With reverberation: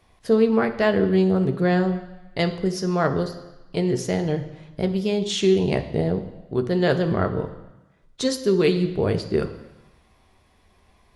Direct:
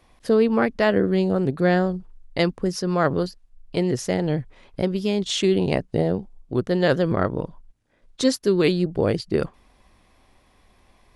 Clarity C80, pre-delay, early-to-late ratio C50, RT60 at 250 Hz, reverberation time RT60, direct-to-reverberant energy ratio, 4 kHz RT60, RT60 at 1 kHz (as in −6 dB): 14.0 dB, 3 ms, 11.5 dB, 1.0 s, 1.0 s, 6.0 dB, 1.1 s, 1.1 s